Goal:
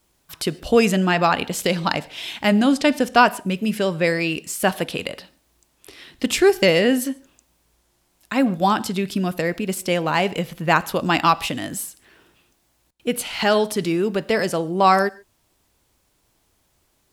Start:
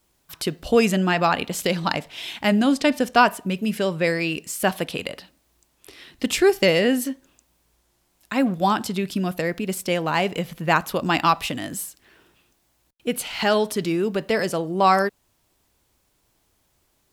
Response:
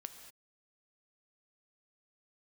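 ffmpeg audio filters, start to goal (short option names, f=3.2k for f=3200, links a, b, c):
-filter_complex "[0:a]asplit=2[a][b];[1:a]atrim=start_sample=2205,atrim=end_sample=3528,asetrate=23373,aresample=44100[c];[b][c]afir=irnorm=-1:irlink=0,volume=-6.5dB[d];[a][d]amix=inputs=2:normalize=0,volume=-1dB"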